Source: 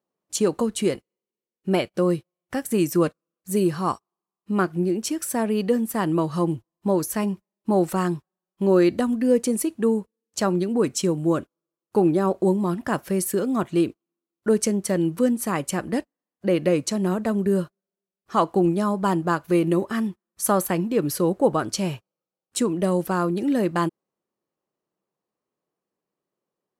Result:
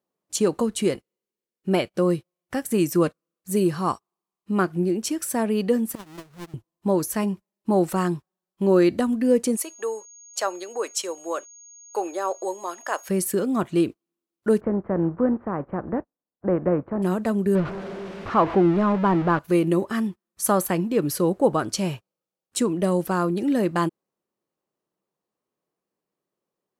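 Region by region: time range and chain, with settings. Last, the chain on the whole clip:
5.95–6.54 half-waves squared off + gate -16 dBFS, range -25 dB + compressor 2.5:1, threshold -40 dBFS
9.55–13.08 HPF 500 Hz 24 dB/oct + whine 6600 Hz -45 dBFS
14.59–17.02 spectral contrast lowered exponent 0.63 + Bessel low-pass 890 Hz, order 6
17.55–19.39 zero-crossing step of -24.5 dBFS + LPF 2200 Hz
whole clip: dry

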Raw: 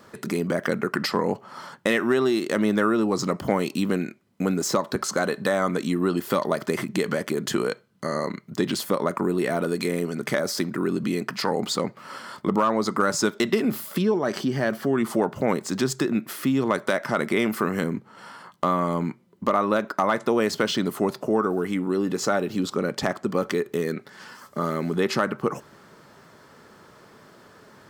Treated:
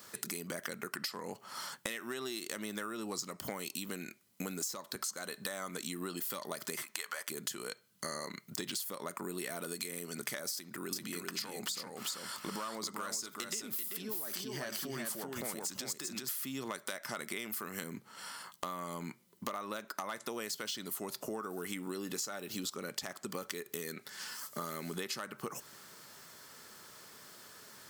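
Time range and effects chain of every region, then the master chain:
6.82–7.28 HPF 760 Hz + bell 1100 Hz +8 dB 1.6 oct
10.54–16.29 compressor 2:1, threshold -28 dBFS + echo 0.387 s -3.5 dB
whole clip: pre-emphasis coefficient 0.9; compressor 12:1, threshold -44 dBFS; gain +8.5 dB

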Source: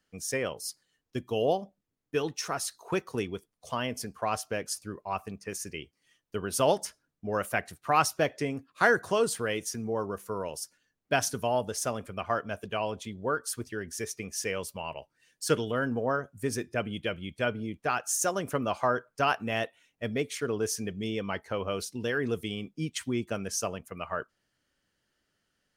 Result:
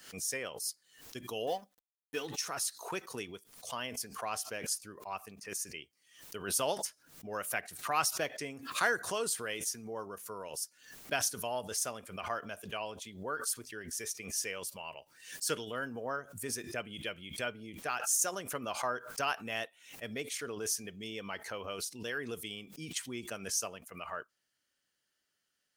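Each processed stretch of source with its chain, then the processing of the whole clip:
1.47–2.27 G.711 law mismatch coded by A + comb 4 ms, depth 56%
whole clip: tilt +2.5 dB/oct; backwards sustainer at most 97 dB/s; gain -7.5 dB

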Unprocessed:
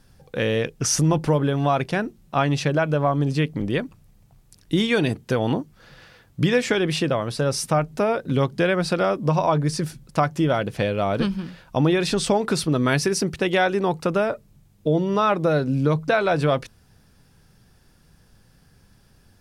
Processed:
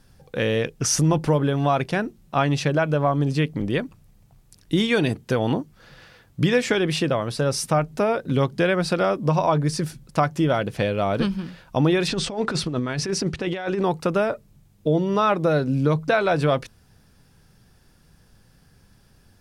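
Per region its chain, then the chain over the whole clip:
12.08–13.83 block floating point 7-bit + negative-ratio compressor -23 dBFS, ratio -0.5 + air absorption 72 m
whole clip: dry

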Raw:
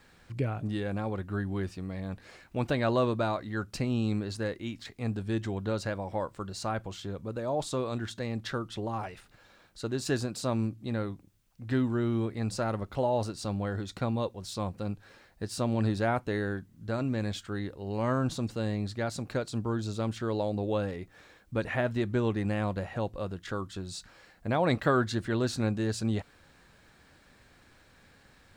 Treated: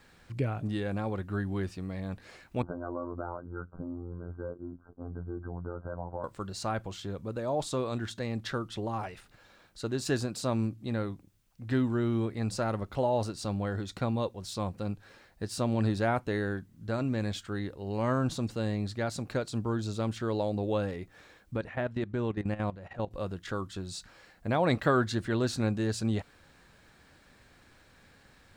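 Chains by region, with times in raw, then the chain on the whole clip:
2.62–6.24 compressor 5:1, threshold -30 dBFS + robotiser 87.1 Hz + brick-wall FIR low-pass 1600 Hz
21.56–23.11 high shelf 5700 Hz -10 dB + level quantiser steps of 15 dB
whole clip: dry

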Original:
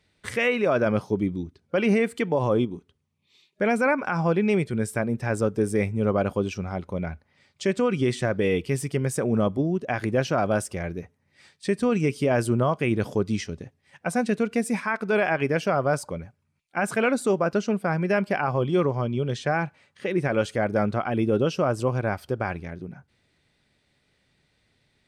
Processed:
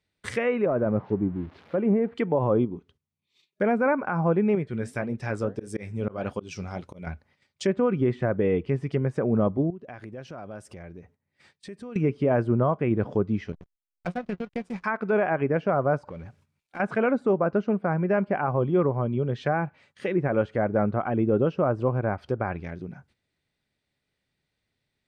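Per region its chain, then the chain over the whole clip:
0.66–2.14 switching spikes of -19.5 dBFS + de-esser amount 100% + air absorption 340 m
4.55–7.07 flange 1.7 Hz, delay 2.5 ms, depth 9.6 ms, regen -69% + high shelf 4400 Hz +11.5 dB + auto swell 0.188 s
9.7–11.96 high shelf 3400 Hz -9.5 dB + compressor 2.5:1, threshold -44 dBFS
13.52–14.84 resonator 180 Hz, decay 0.17 s, mix 80% + backlash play -36 dBFS + transient shaper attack +5 dB, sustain -11 dB
16.07–16.8 G.711 law mismatch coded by mu + high shelf 9300 Hz -8 dB + compressor 3:1, threshold -37 dBFS
whole clip: treble ducked by the level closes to 1400 Hz, closed at -22 dBFS; gate -58 dBFS, range -12 dB

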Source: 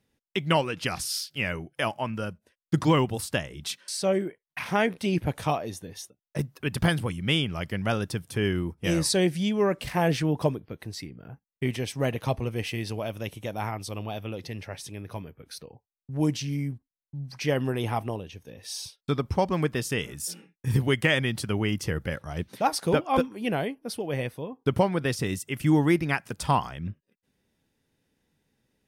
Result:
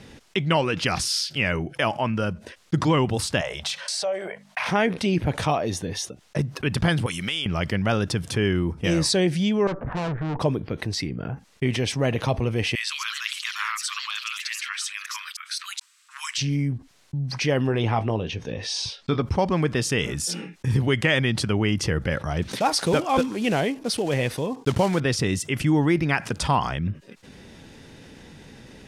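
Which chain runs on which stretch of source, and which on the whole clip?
3.41–4.67 compressor, threshold -33 dBFS + resonant low shelf 430 Hz -13 dB, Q 3 + notches 50/100/150/200/250 Hz
7.06–7.46 tilt +4 dB/oct + compressor 4:1, threshold -36 dBFS
9.67–10.4 steep low-pass 1500 Hz 48 dB/oct + tube stage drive 34 dB, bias 0.65
12.75–16.38 steep high-pass 1100 Hz 72 dB/oct + bell 7900 Hz +8 dB 0.23 oct + echoes that change speed 0.165 s, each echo +4 st, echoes 3, each echo -6 dB
17.67–19.22 LPF 5600 Hz + doubler 18 ms -12 dB
22.42–25.01 block floating point 5-bit + high shelf 3800 Hz +6 dB
whole clip: LPF 7100 Hz 12 dB/oct; fast leveller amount 50%

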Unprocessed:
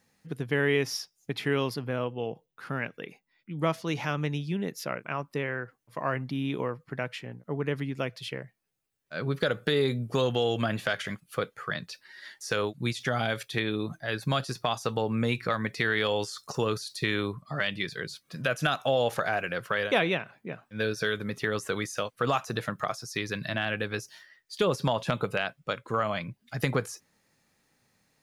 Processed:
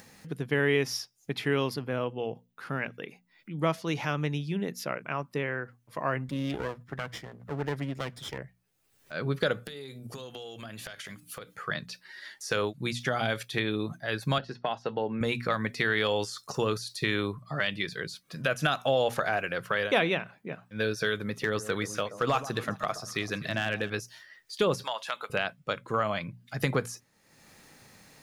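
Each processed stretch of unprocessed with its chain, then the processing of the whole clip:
6.28–8.38 minimum comb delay 0.56 ms + HPF 53 Hz
9.65–11.56 high shelf 3800 Hz +11 dB + notches 60/120/180/240/300 Hz + compressor 20:1, threshold -37 dBFS
14.38–15.21 HPF 170 Hz 6 dB/oct + air absorption 240 m + notch comb 1200 Hz
21.29–23.9 hard clip -17.5 dBFS + echo with dull and thin repeats by turns 0.128 s, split 1100 Hz, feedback 61%, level -13 dB
24.83–25.3 HPF 1000 Hz + notch 2400 Hz, Q 23
whole clip: notches 60/120/180/240 Hz; upward compressor, threshold -41 dBFS

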